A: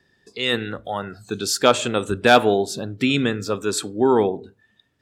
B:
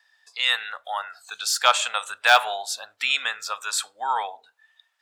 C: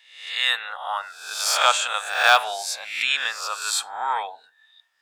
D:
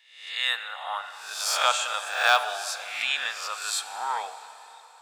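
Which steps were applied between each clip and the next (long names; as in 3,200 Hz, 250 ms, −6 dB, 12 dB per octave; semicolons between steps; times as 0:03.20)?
de-essing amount 40%; inverse Chebyshev high-pass filter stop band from 390 Hz, stop band 40 dB; level +2 dB
peak hold with a rise ahead of every peak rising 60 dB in 0.67 s; level −1.5 dB
dense smooth reverb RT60 4 s, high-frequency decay 0.95×, DRR 11 dB; level −4.5 dB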